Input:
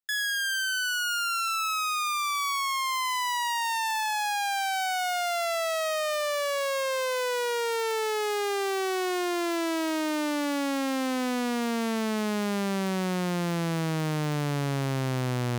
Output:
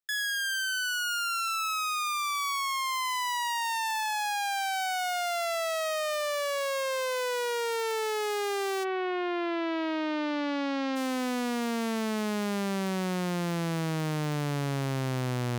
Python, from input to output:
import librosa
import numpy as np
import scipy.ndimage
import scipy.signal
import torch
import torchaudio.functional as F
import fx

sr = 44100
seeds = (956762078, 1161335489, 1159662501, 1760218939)

y = fx.lowpass(x, sr, hz=fx.line((8.83, 2900.0), (10.95, 5100.0)), slope=24, at=(8.83, 10.95), fade=0.02)
y = F.gain(torch.from_numpy(y), -2.0).numpy()